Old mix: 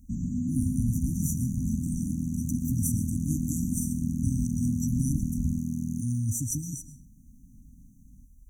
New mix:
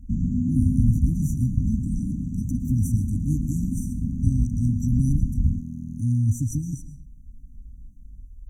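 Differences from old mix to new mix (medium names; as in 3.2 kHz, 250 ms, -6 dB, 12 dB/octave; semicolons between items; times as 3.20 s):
second sound -9.0 dB; master: add tilt EQ -2.5 dB/octave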